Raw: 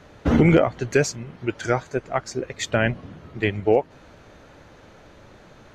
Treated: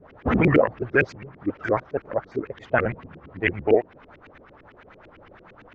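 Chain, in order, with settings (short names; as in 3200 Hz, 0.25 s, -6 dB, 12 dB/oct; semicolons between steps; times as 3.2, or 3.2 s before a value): trilling pitch shifter -3 st, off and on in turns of 68 ms; LFO low-pass saw up 8.9 Hz 270–2700 Hz; tilt shelf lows -5 dB, about 1100 Hz; record warp 78 rpm, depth 100 cents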